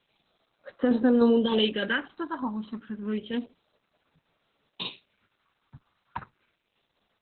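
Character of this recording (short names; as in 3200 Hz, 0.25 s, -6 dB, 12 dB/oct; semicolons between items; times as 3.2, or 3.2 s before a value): phasing stages 4, 0.3 Hz, lowest notch 450–3200 Hz; tremolo saw down 3.3 Hz, depth 40%; a quantiser's noise floor 12-bit, dither triangular; Opus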